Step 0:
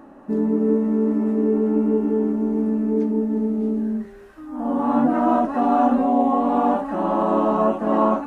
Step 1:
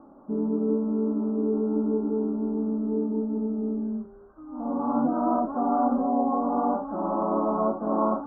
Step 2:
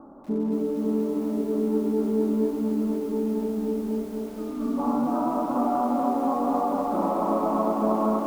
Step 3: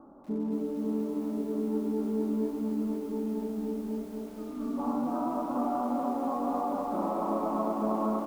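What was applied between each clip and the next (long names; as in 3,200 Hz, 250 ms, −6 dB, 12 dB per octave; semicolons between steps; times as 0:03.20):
Butterworth low-pass 1,400 Hz 72 dB per octave; level −6 dB
downward compressor 16 to 1, threshold −26 dBFS, peak gain reduction 8.5 dB; healed spectral selection 0:03.78–0:04.76, 470–1,100 Hz before; feedback echo at a low word length 240 ms, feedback 80%, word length 9 bits, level −4 dB; level +4 dB
double-tracking delay 24 ms −13 dB; level −6 dB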